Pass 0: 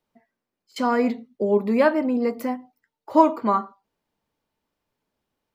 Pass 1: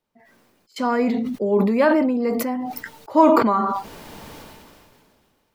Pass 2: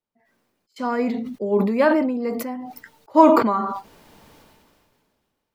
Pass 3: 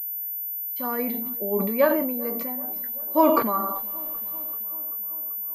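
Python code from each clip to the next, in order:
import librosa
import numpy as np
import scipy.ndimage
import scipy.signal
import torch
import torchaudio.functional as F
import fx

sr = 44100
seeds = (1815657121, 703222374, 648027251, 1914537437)

y1 = fx.sustainer(x, sr, db_per_s=26.0)
y2 = fx.upward_expand(y1, sr, threshold_db=-36.0, expansion=1.5)
y2 = y2 * librosa.db_to_amplitude(2.0)
y3 = fx.comb_fb(y2, sr, f0_hz=570.0, decay_s=0.15, harmonics='all', damping=0.0, mix_pct=80)
y3 = fx.echo_bbd(y3, sr, ms=387, stages=4096, feedback_pct=69, wet_db=-23)
y3 = fx.pwm(y3, sr, carrier_hz=14000.0)
y3 = y3 * librosa.db_to_amplitude(6.5)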